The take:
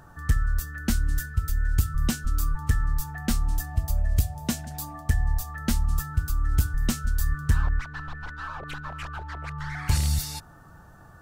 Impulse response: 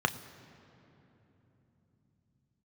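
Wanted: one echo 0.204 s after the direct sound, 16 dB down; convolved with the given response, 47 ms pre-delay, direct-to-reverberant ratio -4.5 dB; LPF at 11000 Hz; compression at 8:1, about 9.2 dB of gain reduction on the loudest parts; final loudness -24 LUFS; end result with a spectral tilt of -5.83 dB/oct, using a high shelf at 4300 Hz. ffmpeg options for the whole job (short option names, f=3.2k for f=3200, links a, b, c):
-filter_complex "[0:a]lowpass=11k,highshelf=f=4.3k:g=-9,acompressor=threshold=-26dB:ratio=8,aecho=1:1:204:0.158,asplit=2[a][b];[1:a]atrim=start_sample=2205,adelay=47[c];[b][c]afir=irnorm=-1:irlink=0,volume=-5.5dB[d];[a][d]amix=inputs=2:normalize=0,volume=7dB"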